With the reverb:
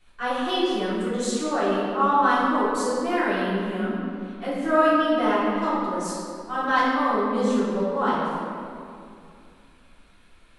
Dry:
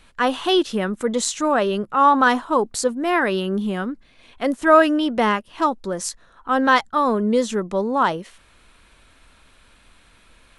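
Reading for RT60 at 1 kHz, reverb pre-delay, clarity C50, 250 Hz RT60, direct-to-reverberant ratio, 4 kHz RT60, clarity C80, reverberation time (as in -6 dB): 2.4 s, 3 ms, -2.5 dB, 3.2 s, -12.5 dB, 1.4 s, 0.0 dB, 2.5 s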